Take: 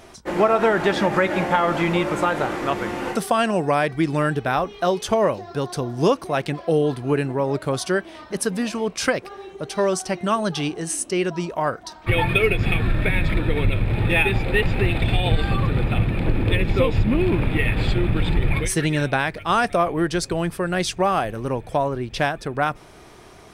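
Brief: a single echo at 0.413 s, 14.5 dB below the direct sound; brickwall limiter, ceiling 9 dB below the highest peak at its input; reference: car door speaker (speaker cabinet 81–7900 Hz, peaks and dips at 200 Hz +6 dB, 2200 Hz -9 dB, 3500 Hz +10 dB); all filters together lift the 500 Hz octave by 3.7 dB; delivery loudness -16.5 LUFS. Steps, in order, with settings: bell 500 Hz +4.5 dB; limiter -12 dBFS; speaker cabinet 81–7900 Hz, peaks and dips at 200 Hz +6 dB, 2200 Hz -9 dB, 3500 Hz +10 dB; echo 0.413 s -14.5 dB; gain +5.5 dB

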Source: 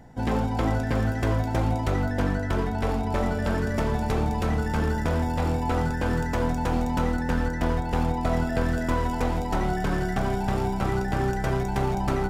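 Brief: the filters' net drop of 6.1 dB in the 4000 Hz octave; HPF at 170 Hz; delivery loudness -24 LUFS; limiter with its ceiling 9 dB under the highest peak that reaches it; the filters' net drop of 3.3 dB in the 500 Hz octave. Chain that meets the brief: HPF 170 Hz; bell 500 Hz -4 dB; bell 4000 Hz -8.5 dB; gain +9.5 dB; limiter -15.5 dBFS

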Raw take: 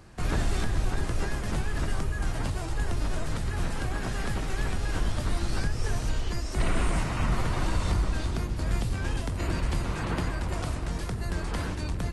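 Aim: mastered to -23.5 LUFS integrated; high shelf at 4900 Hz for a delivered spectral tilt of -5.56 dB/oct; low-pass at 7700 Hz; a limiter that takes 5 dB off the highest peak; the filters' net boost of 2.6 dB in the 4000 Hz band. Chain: LPF 7700 Hz; bell 4000 Hz +5.5 dB; high shelf 4900 Hz -4 dB; gain +8.5 dB; limiter -11.5 dBFS

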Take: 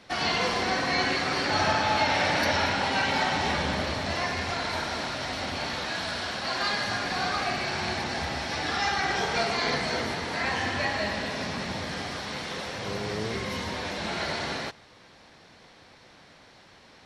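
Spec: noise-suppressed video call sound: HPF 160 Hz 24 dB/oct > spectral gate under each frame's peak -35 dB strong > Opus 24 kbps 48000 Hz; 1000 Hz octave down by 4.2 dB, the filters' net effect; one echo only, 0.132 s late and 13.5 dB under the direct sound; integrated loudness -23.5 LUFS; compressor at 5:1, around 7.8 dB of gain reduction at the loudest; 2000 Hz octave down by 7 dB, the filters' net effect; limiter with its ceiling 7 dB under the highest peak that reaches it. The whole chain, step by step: bell 1000 Hz -4 dB; bell 2000 Hz -7.5 dB; compressor 5:1, threshold -33 dBFS; limiter -29.5 dBFS; HPF 160 Hz 24 dB/oct; echo 0.132 s -13.5 dB; spectral gate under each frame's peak -35 dB strong; gain +14.5 dB; Opus 24 kbps 48000 Hz

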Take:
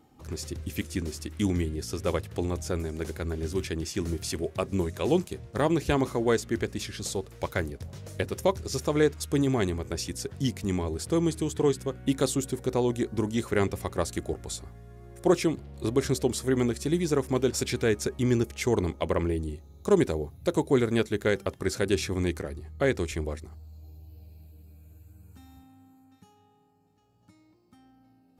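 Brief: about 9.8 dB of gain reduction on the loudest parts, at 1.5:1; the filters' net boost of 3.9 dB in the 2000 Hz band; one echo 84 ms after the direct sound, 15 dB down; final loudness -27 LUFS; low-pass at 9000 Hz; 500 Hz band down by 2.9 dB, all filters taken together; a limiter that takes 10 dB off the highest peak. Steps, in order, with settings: LPF 9000 Hz; bell 500 Hz -4 dB; bell 2000 Hz +5 dB; compressor 1.5:1, threshold -47 dBFS; limiter -28.5 dBFS; echo 84 ms -15 dB; gain +13 dB

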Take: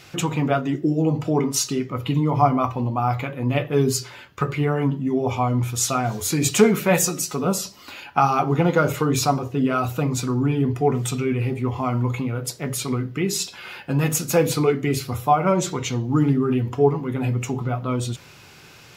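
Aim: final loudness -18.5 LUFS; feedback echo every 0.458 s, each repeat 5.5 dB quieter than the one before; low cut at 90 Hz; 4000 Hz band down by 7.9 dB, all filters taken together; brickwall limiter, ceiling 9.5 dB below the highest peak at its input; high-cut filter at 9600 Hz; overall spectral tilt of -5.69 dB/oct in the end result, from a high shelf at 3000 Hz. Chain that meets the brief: HPF 90 Hz; LPF 9600 Hz; high shelf 3000 Hz -3 dB; bell 4000 Hz -8 dB; limiter -13 dBFS; feedback echo 0.458 s, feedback 53%, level -5.5 dB; gain +5 dB

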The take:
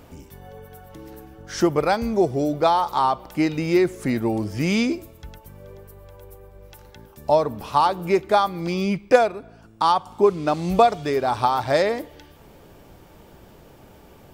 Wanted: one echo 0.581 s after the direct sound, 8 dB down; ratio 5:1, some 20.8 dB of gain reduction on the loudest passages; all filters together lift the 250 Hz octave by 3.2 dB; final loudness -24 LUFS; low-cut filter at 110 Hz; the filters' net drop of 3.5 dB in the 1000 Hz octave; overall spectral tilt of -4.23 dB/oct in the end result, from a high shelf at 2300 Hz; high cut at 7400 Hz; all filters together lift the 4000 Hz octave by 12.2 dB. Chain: HPF 110 Hz; LPF 7400 Hz; bell 250 Hz +5 dB; bell 1000 Hz -7 dB; high shelf 2300 Hz +9 dB; bell 4000 Hz +7.5 dB; compressor 5:1, threshold -33 dBFS; echo 0.581 s -8 dB; gain +12 dB

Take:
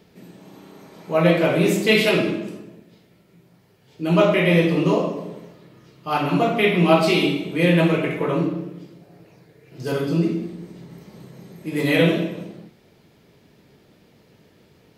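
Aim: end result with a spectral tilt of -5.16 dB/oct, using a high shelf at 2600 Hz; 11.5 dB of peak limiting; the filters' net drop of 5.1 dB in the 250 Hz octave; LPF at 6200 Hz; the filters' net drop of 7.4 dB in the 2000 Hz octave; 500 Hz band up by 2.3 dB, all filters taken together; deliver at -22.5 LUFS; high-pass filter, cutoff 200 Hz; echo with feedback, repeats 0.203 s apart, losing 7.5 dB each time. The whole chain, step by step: HPF 200 Hz; LPF 6200 Hz; bell 250 Hz -8 dB; bell 500 Hz +6 dB; bell 2000 Hz -5 dB; high shelf 2600 Hz -8.5 dB; limiter -14.5 dBFS; feedback echo 0.203 s, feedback 42%, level -7.5 dB; gain +2 dB

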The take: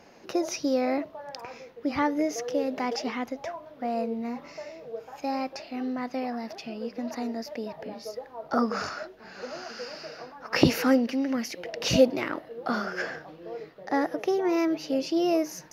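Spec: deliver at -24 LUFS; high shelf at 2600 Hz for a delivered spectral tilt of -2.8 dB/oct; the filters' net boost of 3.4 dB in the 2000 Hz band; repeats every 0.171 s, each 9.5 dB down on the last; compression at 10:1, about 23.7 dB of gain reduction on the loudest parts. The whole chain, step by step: bell 2000 Hz +6 dB; high shelf 2600 Hz -4 dB; compressor 10:1, threshold -38 dBFS; feedback echo 0.171 s, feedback 33%, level -9.5 dB; gain +18 dB

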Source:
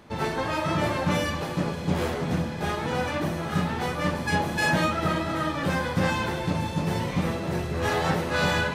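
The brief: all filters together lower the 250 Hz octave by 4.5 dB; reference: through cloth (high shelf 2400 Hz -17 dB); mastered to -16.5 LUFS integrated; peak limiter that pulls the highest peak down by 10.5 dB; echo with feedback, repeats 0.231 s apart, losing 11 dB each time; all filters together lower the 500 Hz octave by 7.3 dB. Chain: bell 250 Hz -5.5 dB; bell 500 Hz -6.5 dB; limiter -23.5 dBFS; high shelf 2400 Hz -17 dB; feedback echo 0.231 s, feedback 28%, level -11 dB; gain +18 dB

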